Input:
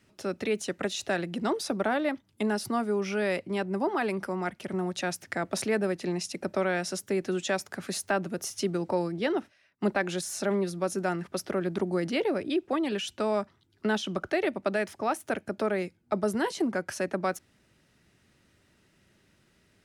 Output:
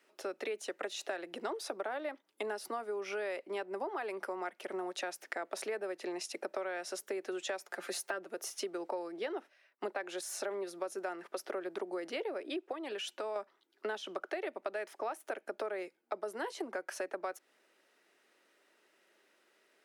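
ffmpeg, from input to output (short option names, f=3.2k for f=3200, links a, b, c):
-filter_complex "[0:a]asettb=1/sr,asplit=3[a][b][c];[a]atrim=end=7.674[d];[b]atrim=start=7.67:end=8.25,asetpts=PTS-STARTPTS,afade=t=in:d=0.004:c=qsin,afade=t=out:st=0.576:d=0.004:c=qsin,aecho=1:1:5.7:0.65,atrim=end_sample=25578[e];[c]atrim=start=8.246[f];[d][e]acrossfade=d=0.004:c1=hsin:c2=qsin[g];[g][f]acrossfade=d=0.004:c1=qsin:c2=hsin,asettb=1/sr,asplit=3[h][i][j];[h]atrim=end=12.724[k];[i]atrim=start=12.72:end=13.36,asetpts=PTS-STARTPTS,afade=t=in:d=0.004:c=qsin,afade=t=out:st=0.636:d=0.004:c=qsin,acompressor=threshold=-32dB:ratio=3:attack=3.2:release=140:knee=1:detection=peak[l];[j]atrim=start=13.356[m];[k][l]acrossfade=d=0.004:c1=hsin:c2=qsin[n];[n][m]acrossfade=d=0.004:c1=qsin:c2=hsin,highpass=f=380:w=0.5412,highpass=f=380:w=1.3066,equalizer=f=6.4k:t=o:w=2.3:g=-5.5,acompressor=threshold=-35dB:ratio=6"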